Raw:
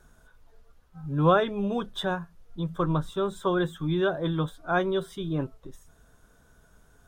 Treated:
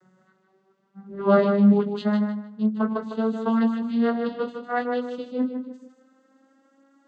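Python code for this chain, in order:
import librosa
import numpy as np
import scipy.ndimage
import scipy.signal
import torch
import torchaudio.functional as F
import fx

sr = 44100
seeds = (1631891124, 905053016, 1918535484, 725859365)

p1 = fx.vocoder_glide(x, sr, note=54, semitones=7)
p2 = fx.chorus_voices(p1, sr, voices=2, hz=0.56, base_ms=21, depth_ms=2.7, mix_pct=30)
p3 = p2 + fx.echo_feedback(p2, sr, ms=154, feedback_pct=24, wet_db=-7, dry=0)
y = F.gain(torch.from_numpy(p3), 6.5).numpy()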